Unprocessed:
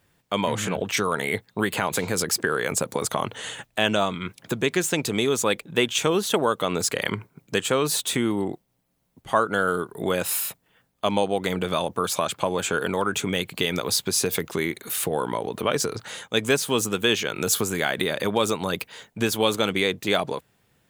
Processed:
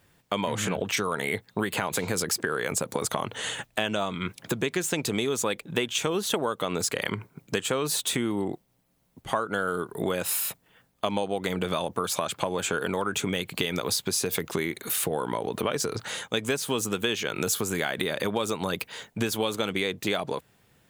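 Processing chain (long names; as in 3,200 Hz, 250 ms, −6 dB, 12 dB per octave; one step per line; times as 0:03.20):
downward compressor 4 to 1, threshold −27 dBFS, peak gain reduction 10.5 dB
level +2.5 dB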